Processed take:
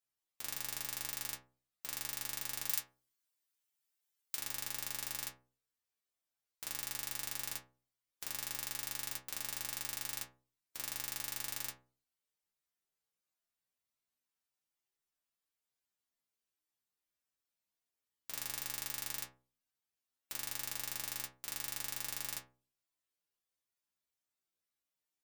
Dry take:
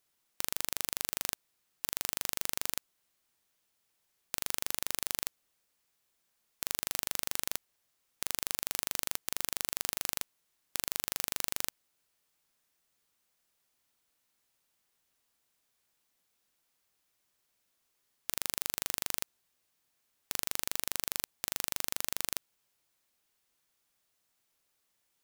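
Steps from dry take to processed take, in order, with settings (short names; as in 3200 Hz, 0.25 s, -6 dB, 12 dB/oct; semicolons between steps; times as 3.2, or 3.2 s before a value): spectral noise reduction 9 dB; 2.67–4.35 tilt +2 dB/oct; metallic resonator 62 Hz, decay 0.47 s, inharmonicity 0.002; gain +4 dB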